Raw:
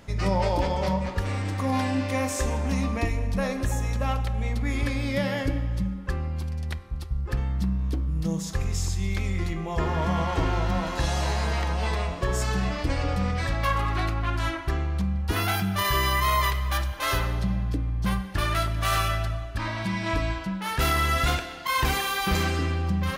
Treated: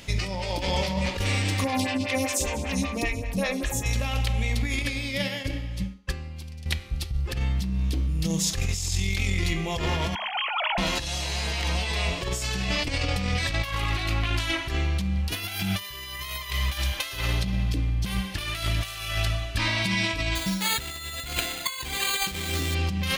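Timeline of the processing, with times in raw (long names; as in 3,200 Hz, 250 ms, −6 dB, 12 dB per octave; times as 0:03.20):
0:01.64–0:03.86: phaser with staggered stages 5.1 Hz
0:04.79–0:06.66: expander for the loud parts 2.5 to 1, over −38 dBFS
0:10.15–0:10.78: three sine waves on the formant tracks
0:20.35–0:22.75: bad sample-rate conversion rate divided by 8×, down filtered, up hold
whole clip: high shelf with overshoot 1,900 Hz +9 dB, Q 1.5; hum removal 209.5 Hz, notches 37; compressor whose output falls as the input rises −26 dBFS, ratio −0.5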